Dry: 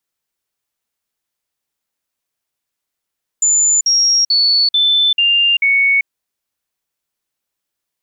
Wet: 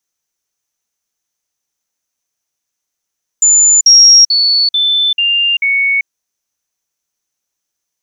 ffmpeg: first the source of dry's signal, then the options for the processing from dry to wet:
-f lavfi -i "aevalsrc='0.335*clip(min(mod(t,0.44),0.39-mod(t,0.44))/0.005,0,1)*sin(2*PI*7050*pow(2,-floor(t/0.44)/3)*mod(t,0.44))':d=2.64:s=44100"
-af "equalizer=f=6.1k:t=o:w=0.27:g=15"

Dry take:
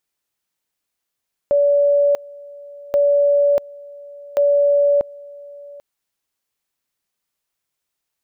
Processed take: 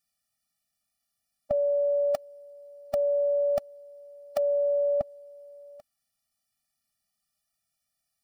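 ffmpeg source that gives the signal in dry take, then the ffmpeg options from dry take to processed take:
-f lavfi -i "aevalsrc='pow(10,(-11.5-23*gte(mod(t,1.43),0.64))/20)*sin(2*PI*573*t)':d=4.29:s=44100"
-af "superequalizer=14b=1.78:16b=1.78,afftfilt=real='re*eq(mod(floor(b*sr/1024/280),2),0)':imag='im*eq(mod(floor(b*sr/1024/280),2),0)':win_size=1024:overlap=0.75"

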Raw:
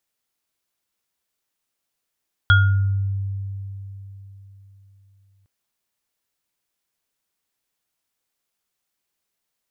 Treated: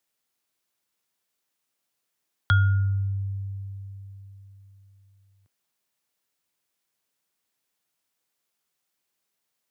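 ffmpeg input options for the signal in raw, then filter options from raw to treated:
-f lavfi -i "aevalsrc='0.266*pow(10,-3*t/3.85)*sin(2*PI*98.2*t)+0.299*pow(10,-3*t/0.59)*sin(2*PI*1420*t)+0.112*pow(10,-3*t/0.28)*sin(2*PI*3320*t)':d=2.96:s=44100"
-filter_complex "[0:a]highpass=100,acrossover=split=160|960[a][b][c];[c]acompressor=threshold=-29dB:ratio=6[d];[a][b][d]amix=inputs=3:normalize=0"

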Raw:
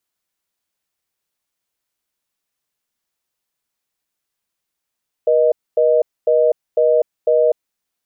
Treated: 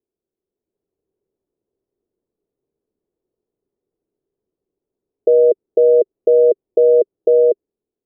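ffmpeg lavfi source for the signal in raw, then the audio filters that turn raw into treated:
-f lavfi -i "aevalsrc='0.211*(sin(2*PI*480*t)+sin(2*PI*620*t))*clip(min(mod(t,0.5),0.25-mod(t,0.5))/0.005,0,1)':d=2.42:s=44100"
-af "alimiter=limit=-14dB:level=0:latency=1:release=15,lowpass=f=400:t=q:w=4.9,dynaudnorm=f=200:g=7:m=7dB"

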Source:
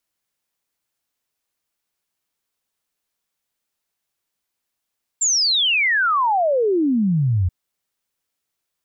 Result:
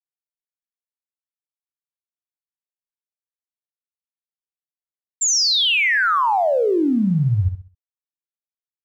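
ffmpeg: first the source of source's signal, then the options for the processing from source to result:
-f lavfi -i "aevalsrc='0.178*clip(min(t,2.28-t)/0.01,0,1)*sin(2*PI*7500*2.28/log(84/7500)*(exp(log(84/7500)*t/2.28)-1))':d=2.28:s=44100"
-filter_complex "[0:a]aeval=exprs='sgn(val(0))*max(abs(val(0))-0.00316,0)':c=same,asplit=2[a][b];[b]aecho=0:1:65|130|195|260:0.376|0.12|0.0385|0.0123[c];[a][c]amix=inputs=2:normalize=0"

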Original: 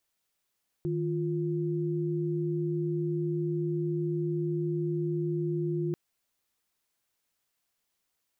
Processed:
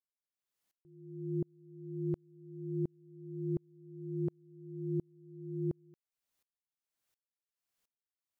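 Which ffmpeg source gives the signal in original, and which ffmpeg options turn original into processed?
-f lavfi -i "aevalsrc='0.0316*(sin(2*PI*155.56*t)+sin(2*PI*349.23*t))':d=5.09:s=44100"
-af "aeval=exprs='val(0)*pow(10,-39*if(lt(mod(-1.4*n/s,1),2*abs(-1.4)/1000),1-mod(-1.4*n/s,1)/(2*abs(-1.4)/1000),(mod(-1.4*n/s,1)-2*abs(-1.4)/1000)/(1-2*abs(-1.4)/1000))/20)':c=same"

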